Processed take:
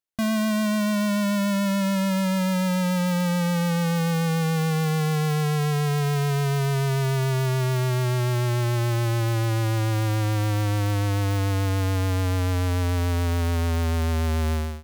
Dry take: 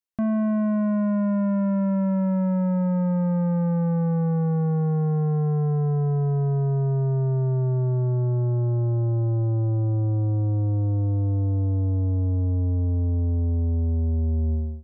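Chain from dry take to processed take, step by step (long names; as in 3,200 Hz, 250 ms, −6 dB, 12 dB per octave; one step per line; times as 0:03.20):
each half-wave held at its own peak
pitch vibrato 6.9 Hz 23 cents
level −1.5 dB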